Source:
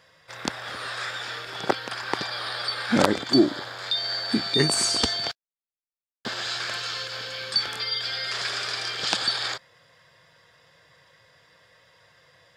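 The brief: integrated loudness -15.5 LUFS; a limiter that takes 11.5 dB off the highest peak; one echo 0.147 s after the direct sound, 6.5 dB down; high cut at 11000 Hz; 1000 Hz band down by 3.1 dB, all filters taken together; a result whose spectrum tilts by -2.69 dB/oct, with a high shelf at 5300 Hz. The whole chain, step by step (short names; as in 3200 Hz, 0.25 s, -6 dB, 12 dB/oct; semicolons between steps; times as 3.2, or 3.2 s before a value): LPF 11000 Hz; bell 1000 Hz -4 dB; high shelf 5300 Hz -5.5 dB; limiter -15.5 dBFS; echo 0.147 s -6.5 dB; gain +12.5 dB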